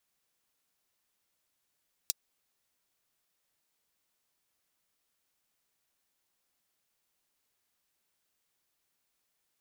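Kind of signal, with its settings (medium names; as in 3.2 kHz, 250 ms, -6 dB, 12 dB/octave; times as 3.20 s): closed hi-hat, high-pass 4.6 kHz, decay 0.03 s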